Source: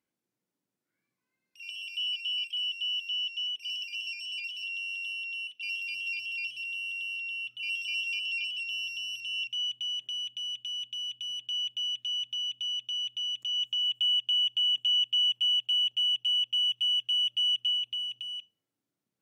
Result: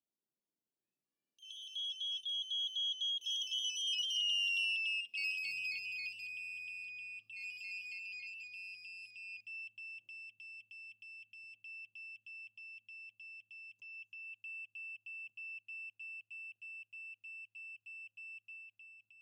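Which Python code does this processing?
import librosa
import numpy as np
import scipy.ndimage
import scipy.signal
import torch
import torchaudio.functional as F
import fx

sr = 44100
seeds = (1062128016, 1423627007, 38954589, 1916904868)

y = fx.doppler_pass(x, sr, speed_mps=38, closest_m=30.0, pass_at_s=4.56)
y = fx.band_shelf(y, sr, hz=1700.0, db=-8.5, octaves=1.2)
y = y * librosa.db_to_amplitude(3.5)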